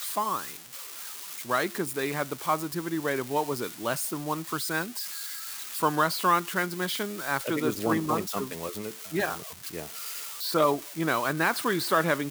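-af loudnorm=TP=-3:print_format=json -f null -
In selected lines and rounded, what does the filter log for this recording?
"input_i" : "-28.6",
"input_tp" : "-10.1",
"input_lra" : "3.0",
"input_thresh" : "-38.7",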